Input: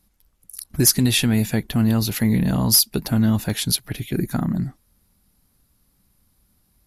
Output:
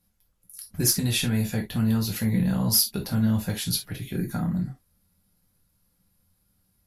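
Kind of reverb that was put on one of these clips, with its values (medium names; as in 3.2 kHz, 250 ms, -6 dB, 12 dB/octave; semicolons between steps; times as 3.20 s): gated-style reverb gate 90 ms falling, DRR -0.5 dB; trim -9 dB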